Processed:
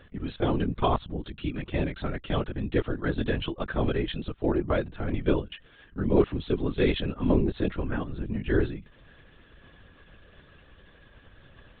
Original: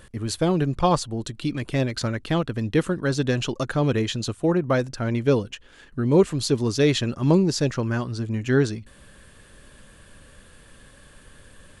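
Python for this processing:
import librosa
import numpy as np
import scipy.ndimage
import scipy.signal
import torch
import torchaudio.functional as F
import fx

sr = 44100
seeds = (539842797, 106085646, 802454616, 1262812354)

y = fx.lpc_vocoder(x, sr, seeds[0], excitation='whisper', order=16)
y = y * 10.0 ** (-4.5 / 20.0)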